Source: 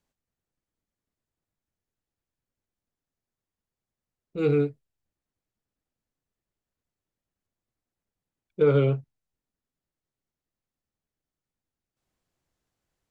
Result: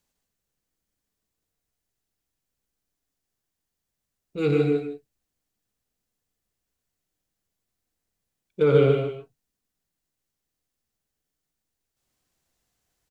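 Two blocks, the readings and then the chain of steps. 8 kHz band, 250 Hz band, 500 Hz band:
no reading, +3.0 dB, +3.0 dB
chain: treble shelf 3 kHz +8.5 dB; delay 153 ms -8 dB; gated-style reverb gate 170 ms rising, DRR 4 dB

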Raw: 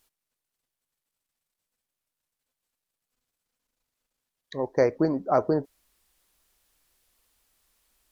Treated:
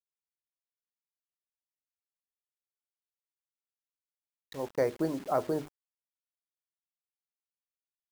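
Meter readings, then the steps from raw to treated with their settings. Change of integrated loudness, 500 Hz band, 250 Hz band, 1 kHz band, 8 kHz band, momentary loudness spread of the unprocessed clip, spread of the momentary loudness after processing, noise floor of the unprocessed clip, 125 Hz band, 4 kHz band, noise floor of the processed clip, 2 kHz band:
-6.5 dB, -6.5 dB, -7.0 dB, -6.5 dB, no reading, 9 LU, 14 LU, under -85 dBFS, -7.5 dB, -3.0 dB, under -85 dBFS, -6.0 dB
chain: hum notches 50/100/150/200/250/300/350/400 Hz; bit crusher 7-bit; trim -6.5 dB

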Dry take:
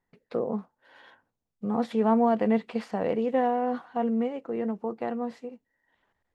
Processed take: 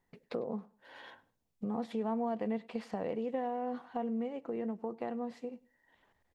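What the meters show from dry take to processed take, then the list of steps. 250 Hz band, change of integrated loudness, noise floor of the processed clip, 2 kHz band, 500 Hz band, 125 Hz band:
-9.5 dB, -9.5 dB, -80 dBFS, -9.5 dB, -9.5 dB, -8.5 dB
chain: peaking EQ 1.4 kHz -3.5 dB 0.53 oct; compression 2.5:1, threshold -42 dBFS, peak gain reduction 15.5 dB; on a send: feedback delay 101 ms, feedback 24%, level -23.5 dB; on the sum: trim +3 dB

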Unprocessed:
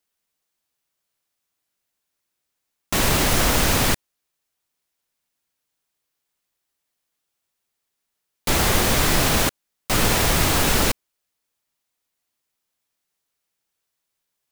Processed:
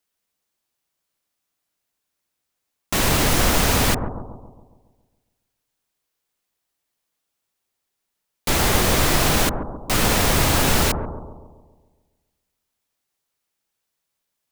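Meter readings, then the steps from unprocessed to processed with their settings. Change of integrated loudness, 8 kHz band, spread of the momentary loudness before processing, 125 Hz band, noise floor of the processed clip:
+0.5 dB, 0.0 dB, 7 LU, +1.5 dB, -79 dBFS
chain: bucket-brigade echo 138 ms, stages 1024, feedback 53%, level -5.5 dB

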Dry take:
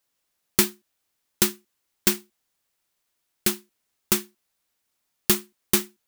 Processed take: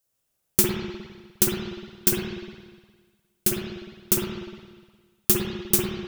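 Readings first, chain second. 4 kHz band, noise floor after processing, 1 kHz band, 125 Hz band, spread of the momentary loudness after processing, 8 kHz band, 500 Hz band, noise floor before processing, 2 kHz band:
-3.0 dB, -76 dBFS, -2.5 dB, +5.0 dB, 17 LU, +0.5 dB, +2.5 dB, -77 dBFS, -3.5 dB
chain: graphic EQ 125/250/1000/2000/4000 Hz +3/-7/-8/-9/-6 dB; spring tank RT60 1.5 s, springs 51/59 ms, chirp 60 ms, DRR -3 dB; trim +2 dB

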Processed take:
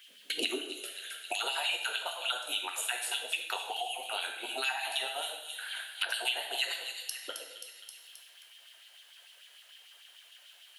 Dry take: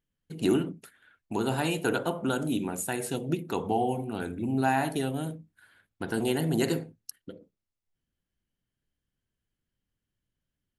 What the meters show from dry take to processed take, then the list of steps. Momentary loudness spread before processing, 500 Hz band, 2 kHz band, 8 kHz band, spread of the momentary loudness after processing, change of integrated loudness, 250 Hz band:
17 LU, -12.5 dB, +2.5 dB, +1.0 dB, 22 LU, -4.0 dB, -22.0 dB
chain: high-pass 130 Hz; LFO high-pass sine 6.7 Hz 460–3500 Hz; compression, threshold -28 dBFS, peak gain reduction 9.5 dB; fifteen-band graphic EQ 1 kHz -8 dB, 4 kHz +4 dB, 10 kHz +5 dB; two-slope reverb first 0.6 s, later 1.7 s, from -27 dB, DRR 2.5 dB; high-pass sweep 210 Hz -> 890 Hz, 0.24–1.55 s; peaking EQ 2.9 kHz +10 dB 0.81 oct; on a send: feedback echo behind a high-pass 265 ms, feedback 31%, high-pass 3.2 kHz, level -11 dB; on the sum: three bands compressed up and down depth 100%; trim -6 dB

